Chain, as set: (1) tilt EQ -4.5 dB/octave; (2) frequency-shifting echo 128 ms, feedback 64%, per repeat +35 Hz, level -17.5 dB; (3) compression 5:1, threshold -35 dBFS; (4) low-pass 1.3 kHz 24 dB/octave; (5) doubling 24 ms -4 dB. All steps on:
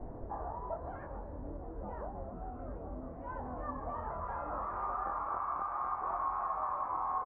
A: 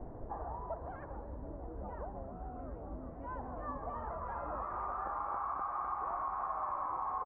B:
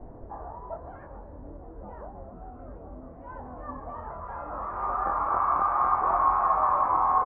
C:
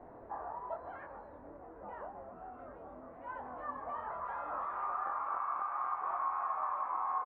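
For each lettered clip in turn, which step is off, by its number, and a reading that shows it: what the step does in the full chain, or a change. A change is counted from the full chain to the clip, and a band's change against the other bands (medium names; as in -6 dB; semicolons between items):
5, loudness change -1.5 LU; 3, mean gain reduction 4.0 dB; 1, 125 Hz band -14.0 dB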